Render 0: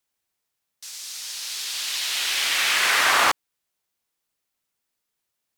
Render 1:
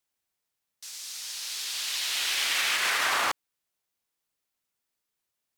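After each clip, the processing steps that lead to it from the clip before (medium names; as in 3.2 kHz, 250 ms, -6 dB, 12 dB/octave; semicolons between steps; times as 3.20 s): peak limiter -13 dBFS, peak gain reduction 6 dB; trim -3.5 dB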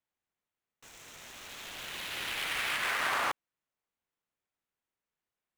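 median filter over 9 samples; trim -3 dB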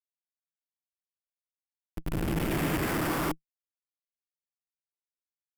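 hum notches 60/120/180 Hz; Schmitt trigger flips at -31.5 dBFS; graphic EQ with 31 bands 160 Hz +9 dB, 315 Hz +11 dB, 4 kHz -6 dB, 6.3 kHz -5 dB, 12.5 kHz +7 dB; trim +8 dB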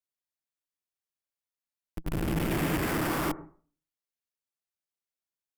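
on a send at -15 dB: inverse Chebyshev low-pass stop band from 4 kHz, stop band 50 dB + reverberation RT60 0.45 s, pre-delay 71 ms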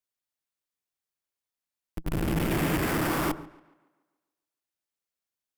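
tape echo 142 ms, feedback 50%, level -20.5 dB, low-pass 4.3 kHz; trim +2 dB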